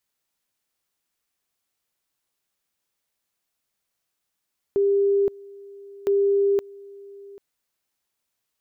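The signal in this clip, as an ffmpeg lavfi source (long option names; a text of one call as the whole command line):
ffmpeg -f lavfi -i "aevalsrc='pow(10,(-16.5-23*gte(mod(t,1.31),0.52))/20)*sin(2*PI*399*t)':duration=2.62:sample_rate=44100" out.wav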